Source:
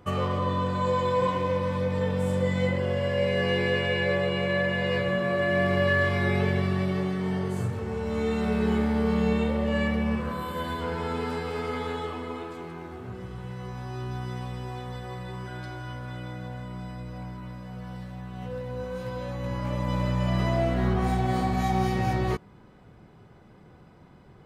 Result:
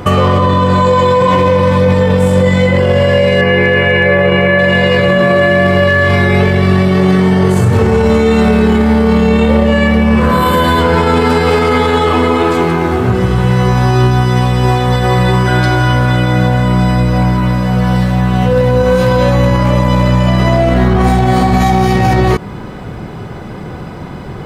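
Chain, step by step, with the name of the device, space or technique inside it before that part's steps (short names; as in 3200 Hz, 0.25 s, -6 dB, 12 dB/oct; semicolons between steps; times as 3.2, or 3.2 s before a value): 3.41–4.59 ten-band EQ 2000 Hz +5 dB, 4000 Hz -9 dB, 8000 Hz -11 dB; loud club master (compressor 2.5:1, threshold -27 dBFS, peak gain reduction 5.5 dB; hard clip -19.5 dBFS, distortion -42 dB; maximiser +28 dB); gain -1 dB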